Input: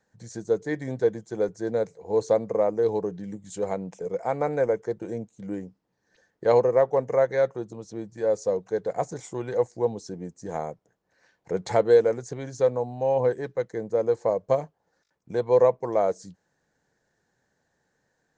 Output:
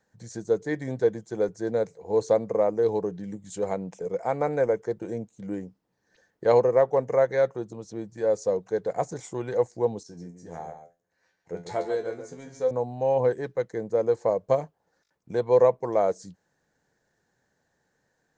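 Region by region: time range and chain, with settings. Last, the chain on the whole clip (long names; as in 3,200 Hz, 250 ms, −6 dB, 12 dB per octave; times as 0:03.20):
0:10.03–0:12.71: tuned comb filter 86 Hz, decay 0.24 s, mix 90% + single-tap delay 141 ms −9 dB
whole clip: no processing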